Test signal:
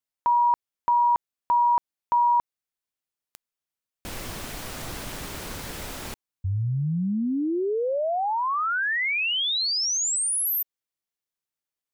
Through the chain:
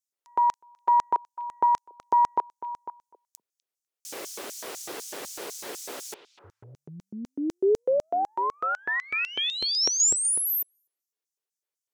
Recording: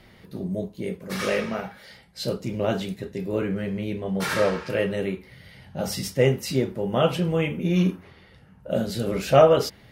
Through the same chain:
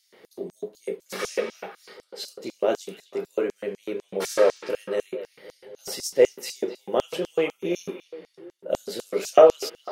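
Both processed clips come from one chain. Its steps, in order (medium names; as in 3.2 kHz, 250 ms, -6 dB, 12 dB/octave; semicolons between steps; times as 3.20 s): repeats whose band climbs or falls 249 ms, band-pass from 2.9 kHz, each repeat -1.4 oct, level -10 dB; Chebyshev shaper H 2 -24 dB, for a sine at -3.5 dBFS; LFO high-pass square 4 Hz 410–6200 Hz; trim -2 dB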